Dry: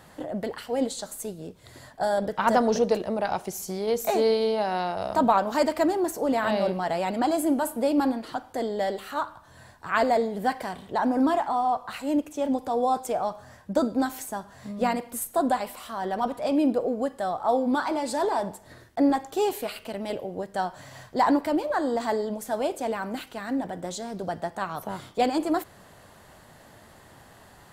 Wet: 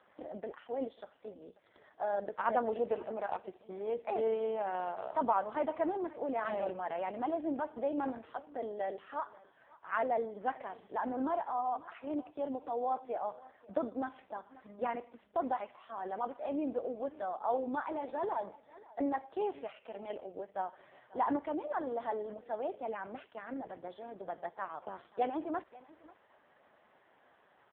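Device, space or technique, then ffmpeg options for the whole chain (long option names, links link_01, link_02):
satellite phone: -af "highpass=330,lowpass=3000,aecho=1:1:539:0.0891,volume=-8dB" -ar 8000 -c:a libopencore_amrnb -b:a 4750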